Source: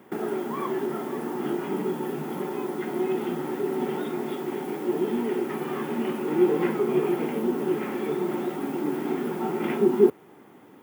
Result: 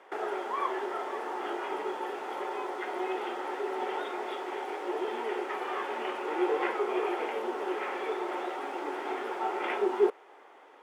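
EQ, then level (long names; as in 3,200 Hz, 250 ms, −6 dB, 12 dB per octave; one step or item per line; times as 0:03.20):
high-pass filter 500 Hz 24 dB per octave
high-frequency loss of the air 90 metres
+2.5 dB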